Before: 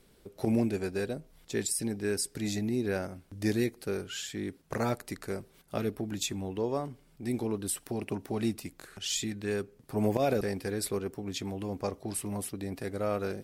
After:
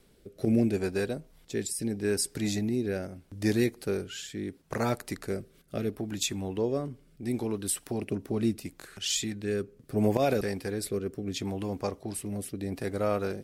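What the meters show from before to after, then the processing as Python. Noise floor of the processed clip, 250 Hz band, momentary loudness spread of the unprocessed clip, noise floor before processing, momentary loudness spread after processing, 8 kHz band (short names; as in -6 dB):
-61 dBFS, +2.5 dB, 9 LU, -62 dBFS, 10 LU, +1.0 dB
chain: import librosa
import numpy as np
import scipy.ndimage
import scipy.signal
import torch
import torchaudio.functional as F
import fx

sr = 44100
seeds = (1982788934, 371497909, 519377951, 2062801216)

y = fx.rotary(x, sr, hz=0.75)
y = y * 10.0 ** (3.5 / 20.0)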